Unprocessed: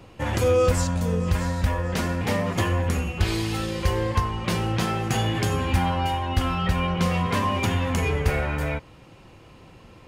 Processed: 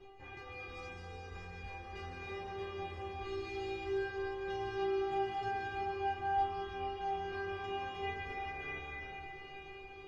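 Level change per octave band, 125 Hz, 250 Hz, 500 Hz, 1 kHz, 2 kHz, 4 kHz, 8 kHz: -26.5 dB, -20.5 dB, -12.0 dB, -9.0 dB, -12.0 dB, -17.5 dB, under -30 dB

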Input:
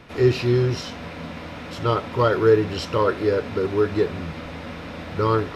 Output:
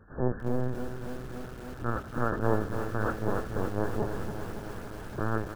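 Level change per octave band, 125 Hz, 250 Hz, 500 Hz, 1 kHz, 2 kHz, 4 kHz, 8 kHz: -8.5 dB, -8.0 dB, -13.0 dB, -8.5 dB, -7.0 dB, -19.5 dB, n/a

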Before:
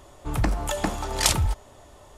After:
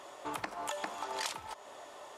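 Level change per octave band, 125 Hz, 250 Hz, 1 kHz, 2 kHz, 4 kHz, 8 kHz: -32.5, -18.0, -7.0, -9.5, -13.5, -17.0 dB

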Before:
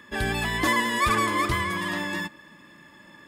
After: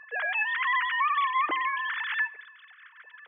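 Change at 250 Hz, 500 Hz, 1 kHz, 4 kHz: -22.0, -13.5, -1.0, -6.5 dB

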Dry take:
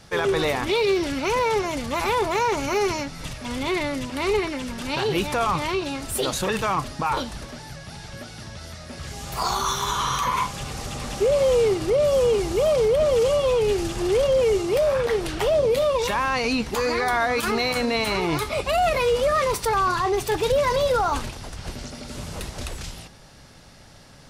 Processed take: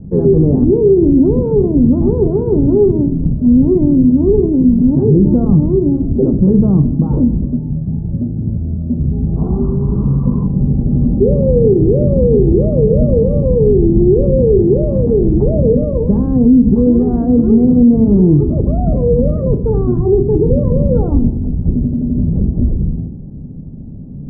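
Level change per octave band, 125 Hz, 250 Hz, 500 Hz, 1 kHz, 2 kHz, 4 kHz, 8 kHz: +21.0 dB, +20.0 dB, +7.5 dB, -11.0 dB, under -30 dB, under -40 dB, under -40 dB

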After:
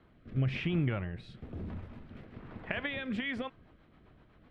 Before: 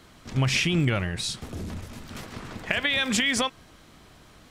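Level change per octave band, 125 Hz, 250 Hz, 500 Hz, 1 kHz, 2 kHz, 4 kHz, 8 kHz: -6.0 dB, -7.0 dB, -8.0 dB, -12.5 dB, -12.0 dB, -18.0 dB, under -35 dB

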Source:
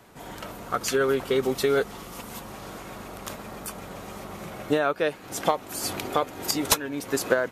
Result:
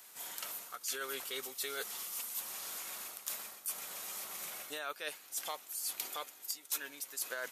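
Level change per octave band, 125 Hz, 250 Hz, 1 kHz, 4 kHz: under -30 dB, -27.5 dB, -16.5 dB, -9.0 dB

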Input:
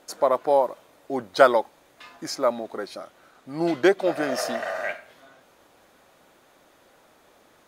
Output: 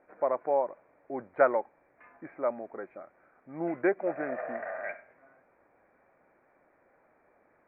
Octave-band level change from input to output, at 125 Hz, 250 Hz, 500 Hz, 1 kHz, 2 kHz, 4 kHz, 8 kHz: -9.5 dB, -8.5 dB, -7.5 dB, -8.5 dB, -8.5 dB, under -40 dB, under -40 dB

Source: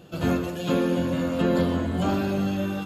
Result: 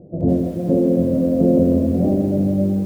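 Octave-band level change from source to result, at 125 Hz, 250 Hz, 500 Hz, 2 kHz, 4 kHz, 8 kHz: +7.0 dB, +8.0 dB, +7.5 dB, under -15 dB, under -15 dB, n/a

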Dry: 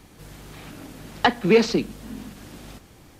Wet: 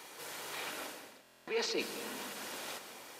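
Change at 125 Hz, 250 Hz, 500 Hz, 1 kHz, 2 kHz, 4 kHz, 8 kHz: -28.0, -21.5, -17.0, -16.5, -12.0, -8.5, -2.0 dB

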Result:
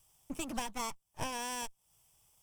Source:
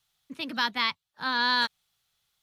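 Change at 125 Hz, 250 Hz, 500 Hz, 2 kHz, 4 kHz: n/a, -5.5 dB, -2.0 dB, -18.0 dB, -16.5 dB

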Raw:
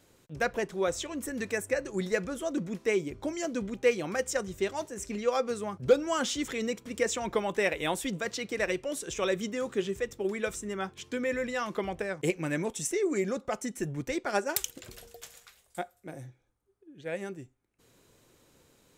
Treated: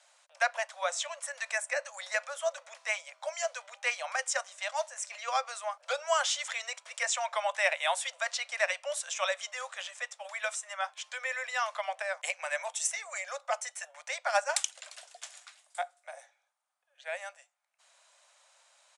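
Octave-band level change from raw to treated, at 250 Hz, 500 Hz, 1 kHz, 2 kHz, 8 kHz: under -40 dB, -6.5 dB, +3.0 dB, +3.0 dB, +3.0 dB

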